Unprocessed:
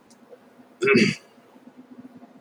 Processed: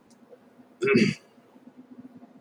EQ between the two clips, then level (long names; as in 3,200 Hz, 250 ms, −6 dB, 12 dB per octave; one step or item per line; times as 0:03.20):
low-shelf EQ 410 Hz +5.5 dB
−6.0 dB